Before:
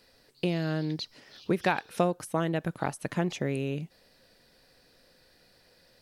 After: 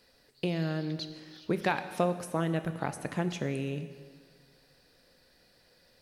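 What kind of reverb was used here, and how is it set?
plate-style reverb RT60 1.7 s, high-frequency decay 0.95×, DRR 9.5 dB; gain -2.5 dB

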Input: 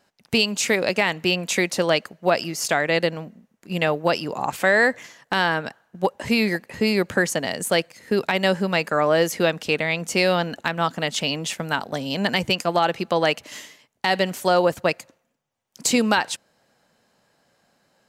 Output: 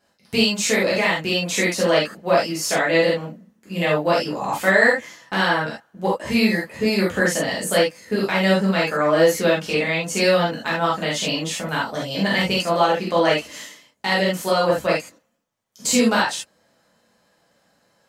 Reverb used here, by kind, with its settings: non-linear reverb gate 0.1 s flat, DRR -7 dB; gain -6 dB

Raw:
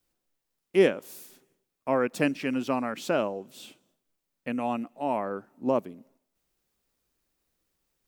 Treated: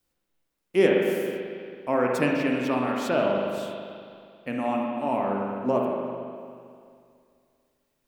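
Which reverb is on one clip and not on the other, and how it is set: spring tank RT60 2.3 s, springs 40/55 ms, chirp 20 ms, DRR -1 dB

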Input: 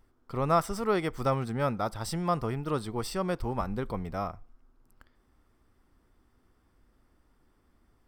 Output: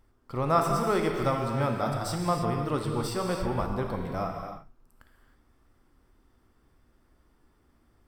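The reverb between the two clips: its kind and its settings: non-linear reverb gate 0.34 s flat, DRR 1.5 dB

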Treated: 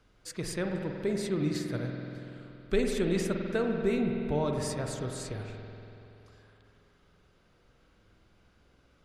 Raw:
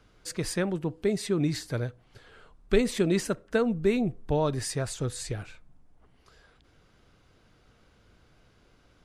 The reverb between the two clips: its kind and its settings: spring tank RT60 3.1 s, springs 47 ms, chirp 50 ms, DRR 2 dB; gain -5 dB

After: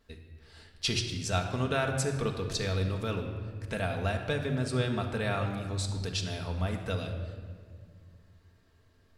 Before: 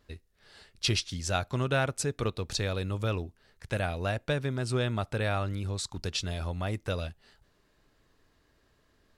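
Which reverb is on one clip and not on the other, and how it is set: shoebox room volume 3000 m³, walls mixed, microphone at 1.6 m; gain -2.5 dB

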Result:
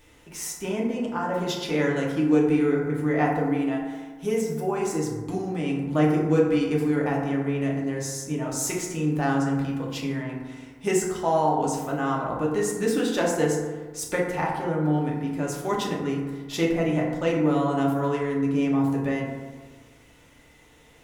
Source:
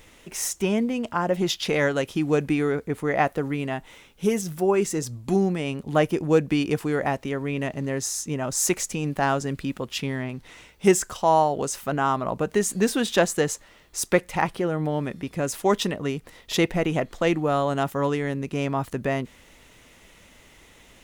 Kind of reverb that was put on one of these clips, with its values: FDN reverb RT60 1.4 s, low-frequency decay 1.1×, high-frequency decay 0.35×, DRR -3.5 dB; gain -7.5 dB

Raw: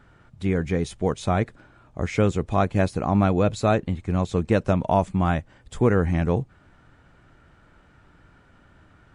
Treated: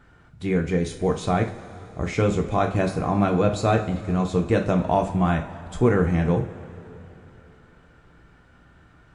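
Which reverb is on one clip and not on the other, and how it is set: two-slope reverb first 0.35 s, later 3.4 s, from -18 dB, DRR 3 dB; gain -1 dB

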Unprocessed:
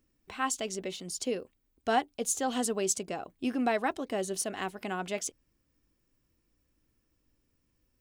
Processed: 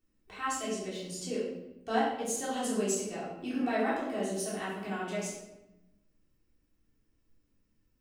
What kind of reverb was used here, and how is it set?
shoebox room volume 360 m³, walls mixed, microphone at 3.5 m; gain -11.5 dB

